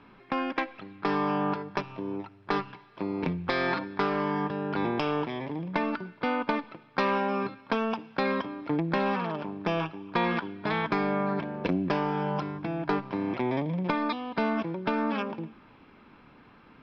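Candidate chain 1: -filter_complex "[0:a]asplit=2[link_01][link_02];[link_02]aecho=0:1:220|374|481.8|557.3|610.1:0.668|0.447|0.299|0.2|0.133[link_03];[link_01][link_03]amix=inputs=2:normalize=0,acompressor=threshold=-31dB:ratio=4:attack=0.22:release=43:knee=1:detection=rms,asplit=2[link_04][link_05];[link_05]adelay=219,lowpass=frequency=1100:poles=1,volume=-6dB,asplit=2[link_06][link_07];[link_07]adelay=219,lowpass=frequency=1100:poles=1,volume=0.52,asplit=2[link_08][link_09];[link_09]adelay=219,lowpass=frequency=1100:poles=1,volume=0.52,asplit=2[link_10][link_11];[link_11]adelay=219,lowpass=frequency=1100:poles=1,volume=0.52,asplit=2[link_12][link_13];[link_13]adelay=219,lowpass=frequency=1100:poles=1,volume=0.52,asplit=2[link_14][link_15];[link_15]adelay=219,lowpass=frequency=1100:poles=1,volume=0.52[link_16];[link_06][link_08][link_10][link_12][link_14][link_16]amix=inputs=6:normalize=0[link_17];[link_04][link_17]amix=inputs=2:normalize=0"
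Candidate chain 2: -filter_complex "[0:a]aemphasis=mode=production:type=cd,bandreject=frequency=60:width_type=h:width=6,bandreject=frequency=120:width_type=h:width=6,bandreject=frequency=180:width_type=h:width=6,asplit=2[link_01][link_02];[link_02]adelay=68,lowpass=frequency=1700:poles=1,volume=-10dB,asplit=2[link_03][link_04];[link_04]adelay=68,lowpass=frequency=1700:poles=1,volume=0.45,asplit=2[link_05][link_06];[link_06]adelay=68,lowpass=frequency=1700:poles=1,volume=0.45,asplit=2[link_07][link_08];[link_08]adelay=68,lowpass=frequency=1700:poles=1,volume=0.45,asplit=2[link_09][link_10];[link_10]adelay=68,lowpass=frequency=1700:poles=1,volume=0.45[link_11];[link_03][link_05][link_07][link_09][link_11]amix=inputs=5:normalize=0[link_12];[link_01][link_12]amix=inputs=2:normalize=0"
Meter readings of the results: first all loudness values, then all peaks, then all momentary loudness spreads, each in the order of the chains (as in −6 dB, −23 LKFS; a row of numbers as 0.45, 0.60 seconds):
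−35.0, −29.5 LKFS; −22.5, −9.5 dBFS; 2, 7 LU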